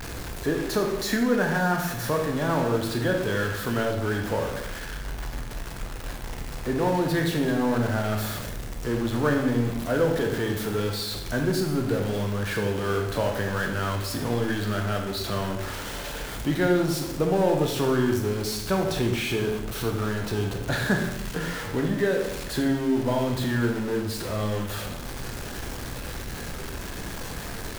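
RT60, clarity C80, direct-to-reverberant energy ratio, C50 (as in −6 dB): 0.90 s, 8.0 dB, 2.0 dB, 5.0 dB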